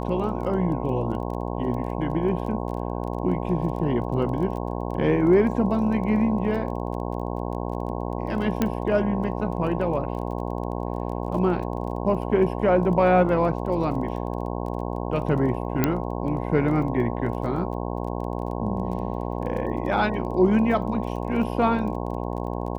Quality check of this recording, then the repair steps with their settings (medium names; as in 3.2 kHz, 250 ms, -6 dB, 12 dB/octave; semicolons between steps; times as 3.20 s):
buzz 60 Hz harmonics 18 -29 dBFS
crackle 20 per s -34 dBFS
8.62 s: pop -9 dBFS
15.84 s: pop -6 dBFS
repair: de-click; de-hum 60 Hz, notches 18